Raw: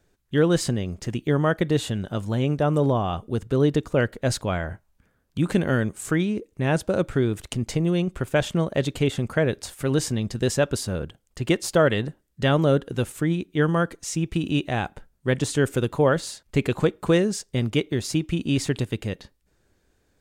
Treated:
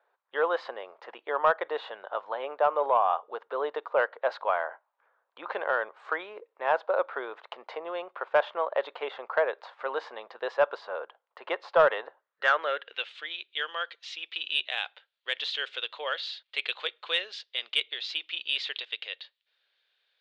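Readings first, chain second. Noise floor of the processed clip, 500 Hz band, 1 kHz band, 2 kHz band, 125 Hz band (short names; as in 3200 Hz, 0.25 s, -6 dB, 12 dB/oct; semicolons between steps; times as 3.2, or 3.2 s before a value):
-81 dBFS, -5.5 dB, +2.5 dB, -0.5 dB, under -40 dB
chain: band-pass sweep 970 Hz -> 3300 Hz, 12.17–13.13; Chebyshev band-pass 490–4100 Hz, order 3; soft clip -18 dBFS, distortion -23 dB; gain +8.5 dB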